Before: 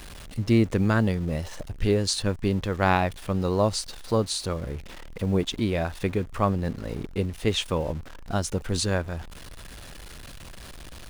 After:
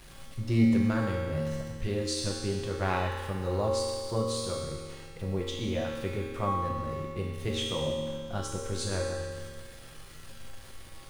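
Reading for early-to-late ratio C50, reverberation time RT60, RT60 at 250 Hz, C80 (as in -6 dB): 0.0 dB, 1.9 s, 1.9 s, 1.5 dB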